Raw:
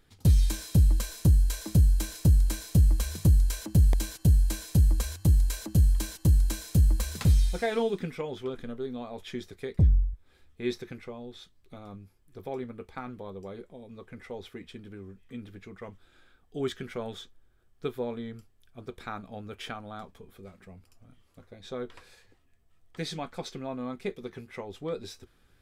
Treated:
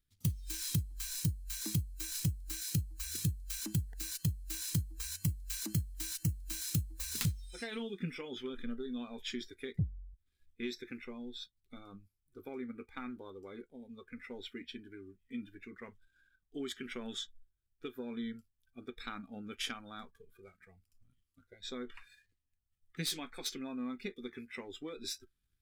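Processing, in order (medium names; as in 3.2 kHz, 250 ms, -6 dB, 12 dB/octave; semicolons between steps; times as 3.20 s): tracing distortion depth 0.094 ms; compression 12:1, threshold -32 dBFS, peak gain reduction 17 dB; waveshaping leveller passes 1; treble shelf 8.8 kHz +7.5 dB; spectral noise reduction 19 dB; amplifier tone stack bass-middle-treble 6-0-2; trim +15.5 dB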